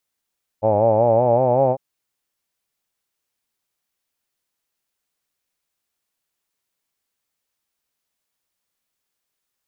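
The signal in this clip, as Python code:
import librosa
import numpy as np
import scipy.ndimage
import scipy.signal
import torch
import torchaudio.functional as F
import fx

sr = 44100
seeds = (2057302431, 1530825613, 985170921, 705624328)

y = fx.vowel(sr, seeds[0], length_s=1.15, word='hawed', hz=104.0, glide_st=4.5, vibrato_hz=5.3, vibrato_st=0.9)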